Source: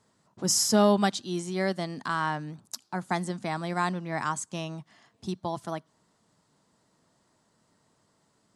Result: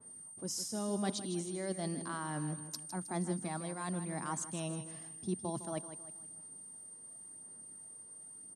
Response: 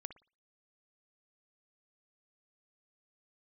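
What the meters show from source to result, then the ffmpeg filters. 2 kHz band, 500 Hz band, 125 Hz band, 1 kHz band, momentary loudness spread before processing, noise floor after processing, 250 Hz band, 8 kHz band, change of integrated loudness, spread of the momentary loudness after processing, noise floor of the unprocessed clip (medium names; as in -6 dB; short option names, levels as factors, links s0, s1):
-13.5 dB, -11.0 dB, -6.0 dB, -12.5 dB, 17 LU, -52 dBFS, -8.5 dB, -7.0 dB, -11.0 dB, 12 LU, -70 dBFS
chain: -filter_complex "[0:a]areverse,acompressor=threshold=0.0141:ratio=6,areverse,aeval=exprs='val(0)+0.00562*sin(2*PI*8800*n/s)':c=same,equalizer=f=290:w=0.58:g=8,asplit=2[s0][s1];[s1]aecho=0:1:158|316|474|632:0.282|0.118|0.0497|0.0209[s2];[s0][s2]amix=inputs=2:normalize=0,aphaser=in_gain=1:out_gain=1:delay=2:decay=0.26:speed=0.93:type=sinusoidal,adynamicequalizer=threshold=0.00316:dfrequency=2800:dqfactor=0.7:tfrequency=2800:tqfactor=0.7:attack=5:release=100:ratio=0.375:range=1.5:mode=boostabove:tftype=highshelf,volume=0.631"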